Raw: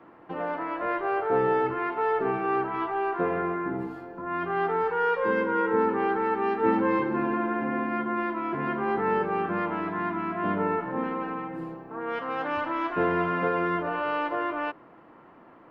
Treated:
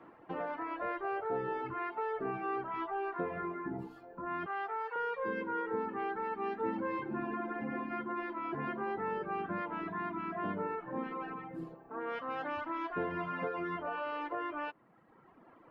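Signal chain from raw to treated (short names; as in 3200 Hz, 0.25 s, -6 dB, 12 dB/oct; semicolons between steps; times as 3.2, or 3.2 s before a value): reverb removal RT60 1.4 s; 4.46–4.96 HPF 680 Hz 12 dB/oct; compressor 2.5:1, threshold -31 dBFS, peak gain reduction 8.5 dB; gain -3.5 dB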